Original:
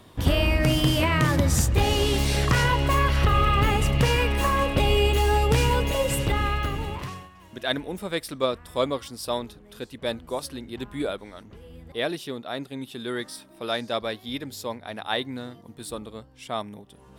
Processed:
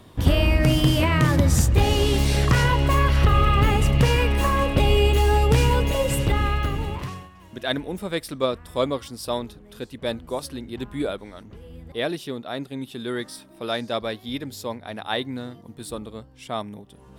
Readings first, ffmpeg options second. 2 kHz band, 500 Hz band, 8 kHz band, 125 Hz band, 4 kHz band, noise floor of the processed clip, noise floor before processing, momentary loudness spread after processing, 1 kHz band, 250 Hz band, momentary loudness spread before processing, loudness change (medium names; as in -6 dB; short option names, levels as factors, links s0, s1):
0.0 dB, +1.5 dB, 0.0 dB, +3.5 dB, 0.0 dB, -48 dBFS, -51 dBFS, 16 LU, +0.5 dB, +3.0 dB, 16 LU, +2.0 dB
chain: -af "lowshelf=f=400:g=4"